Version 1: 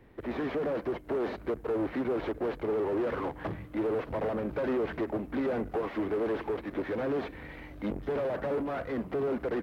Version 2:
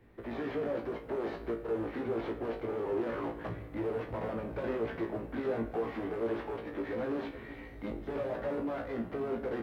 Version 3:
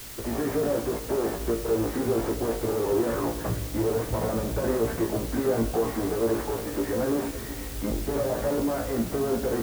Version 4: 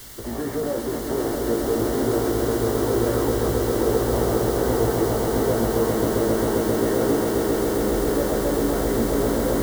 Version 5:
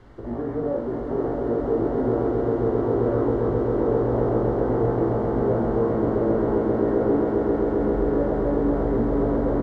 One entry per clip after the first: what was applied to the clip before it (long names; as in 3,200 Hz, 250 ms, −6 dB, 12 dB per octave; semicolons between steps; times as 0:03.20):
flutter between parallel walls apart 3 metres, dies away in 0.23 s; on a send at −11 dB: convolution reverb RT60 2.0 s, pre-delay 27 ms; on the sum: level −5.5 dB
low-pass filter 1,700 Hz 12 dB per octave; low-shelf EQ 110 Hz +9 dB; in parallel at −11 dB: bit-depth reduction 6 bits, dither triangular; on the sum: level +5.5 dB
notch filter 2,500 Hz, Q 5; echo that builds up and dies away 133 ms, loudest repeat 8, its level −6 dB
low-pass filter 1,100 Hz 12 dB per octave; double-tracking delay 42 ms −4.5 dB; level −1.5 dB